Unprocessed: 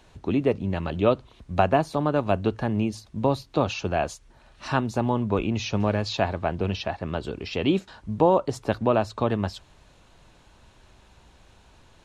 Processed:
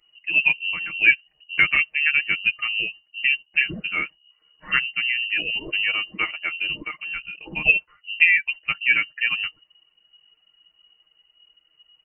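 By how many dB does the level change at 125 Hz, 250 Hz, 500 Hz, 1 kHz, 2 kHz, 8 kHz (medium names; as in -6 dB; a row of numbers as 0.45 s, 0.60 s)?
-18.5 dB, -17.0 dB, -21.0 dB, -11.0 dB, +17.5 dB, under -35 dB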